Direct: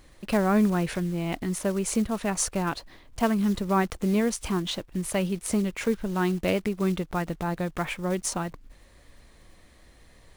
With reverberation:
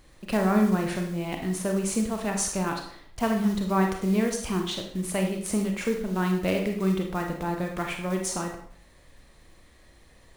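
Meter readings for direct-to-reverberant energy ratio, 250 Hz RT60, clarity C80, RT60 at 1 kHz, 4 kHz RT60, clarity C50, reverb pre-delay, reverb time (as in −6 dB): 2.5 dB, 0.55 s, 9.0 dB, 0.55 s, 0.50 s, 5.5 dB, 30 ms, 0.55 s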